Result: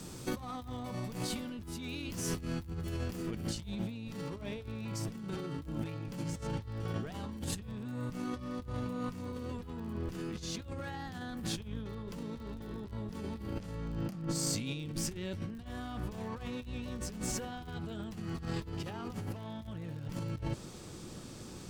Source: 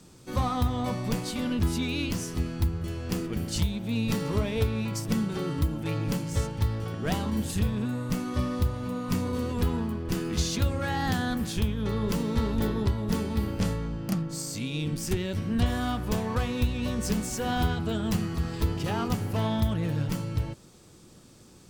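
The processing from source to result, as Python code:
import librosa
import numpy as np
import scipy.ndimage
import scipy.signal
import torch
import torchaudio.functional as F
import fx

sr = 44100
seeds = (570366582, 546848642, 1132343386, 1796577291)

y = fx.high_shelf(x, sr, hz=10000.0, db=fx.steps((0.0, 3.5), (3.31, -7.0)))
y = fx.over_compress(y, sr, threshold_db=-38.0, ratio=-1.0)
y = fx.dmg_crackle(y, sr, seeds[0], per_s=37.0, level_db=-44.0)
y = y * 10.0 ** (-2.0 / 20.0)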